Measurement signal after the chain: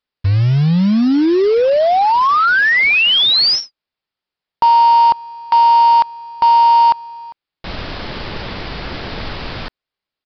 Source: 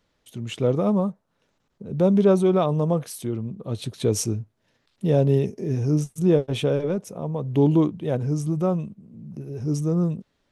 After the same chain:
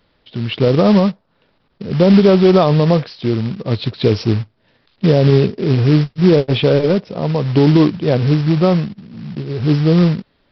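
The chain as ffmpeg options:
-af "aresample=11025,acrusher=bits=4:mode=log:mix=0:aa=0.000001,aresample=44100,alimiter=level_in=3.76:limit=0.891:release=50:level=0:latency=1,volume=0.891"

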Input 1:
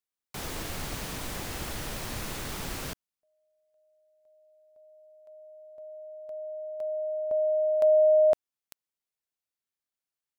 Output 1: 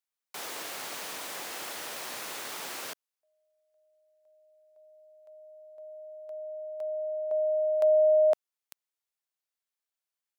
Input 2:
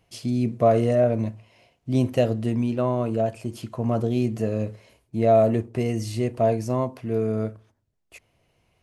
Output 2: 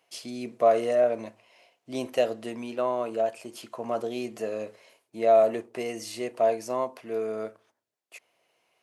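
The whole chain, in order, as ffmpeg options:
-af "highpass=490"

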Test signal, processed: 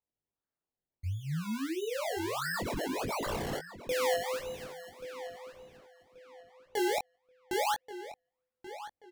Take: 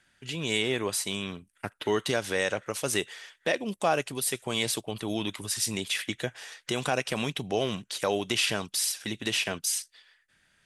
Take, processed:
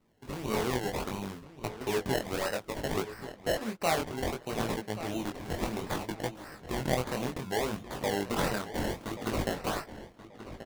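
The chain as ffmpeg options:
-filter_complex "[0:a]acrusher=samples=25:mix=1:aa=0.000001:lfo=1:lforange=25:lforate=1.5,flanger=delay=18:depth=6.3:speed=0.63,asplit=2[s0][s1];[s1]adelay=1132,lowpass=f=4200:p=1,volume=0.224,asplit=2[s2][s3];[s3]adelay=1132,lowpass=f=4200:p=1,volume=0.28,asplit=2[s4][s5];[s5]adelay=1132,lowpass=f=4200:p=1,volume=0.28[s6];[s0][s2][s4][s6]amix=inputs=4:normalize=0"

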